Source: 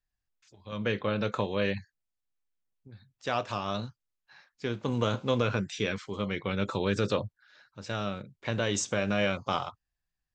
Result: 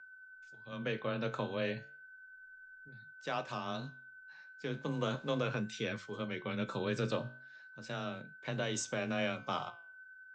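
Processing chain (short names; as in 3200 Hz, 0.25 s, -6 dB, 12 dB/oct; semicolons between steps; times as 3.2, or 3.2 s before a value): whine 1500 Hz -45 dBFS; flange 0.35 Hz, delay 9.8 ms, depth 9.6 ms, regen +76%; frequency shift +18 Hz; gain -2.5 dB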